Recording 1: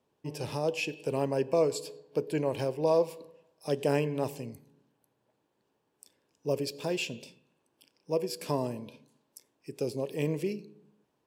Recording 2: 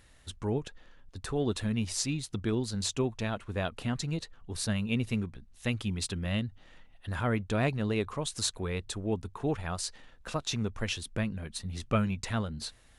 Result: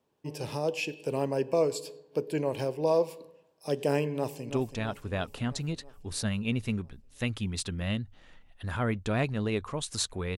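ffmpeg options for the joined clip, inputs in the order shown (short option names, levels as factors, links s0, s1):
-filter_complex "[0:a]apad=whole_dur=10.37,atrim=end=10.37,atrim=end=4.502[s0];[1:a]atrim=start=2.938:end=8.81[s1];[s0][s1]acrossfade=d=0.004:c1=hsin:c2=hsin,asplit=2[s2][s3];[s3]afade=t=in:st=4.13:d=0.01,afade=t=out:st=4.5:d=0.01,aecho=0:1:330|660|990|1320|1650|1980|2310|2640|2970:0.334965|0.217728|0.141523|0.0919899|0.0597934|0.0388657|0.0252627|0.0164208|0.0106735[s4];[s2][s4]amix=inputs=2:normalize=0"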